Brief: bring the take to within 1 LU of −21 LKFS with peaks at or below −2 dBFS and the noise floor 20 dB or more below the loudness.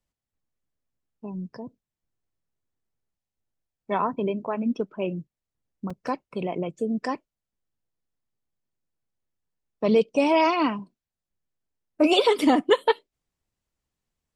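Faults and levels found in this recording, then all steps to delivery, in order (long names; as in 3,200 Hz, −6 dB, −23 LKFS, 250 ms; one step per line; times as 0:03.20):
number of dropouts 1; longest dropout 4.3 ms; integrated loudness −24.5 LKFS; sample peak −6.5 dBFS; target loudness −21.0 LKFS
→ repair the gap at 0:05.90, 4.3 ms
level +3.5 dB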